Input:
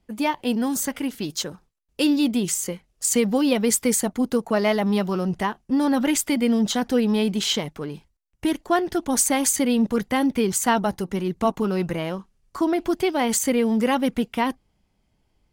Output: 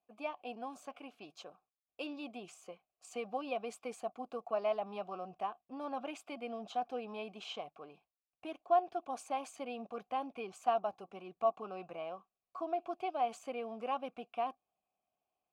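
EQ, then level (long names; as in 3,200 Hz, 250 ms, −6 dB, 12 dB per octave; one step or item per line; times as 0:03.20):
formant filter a
−3.5 dB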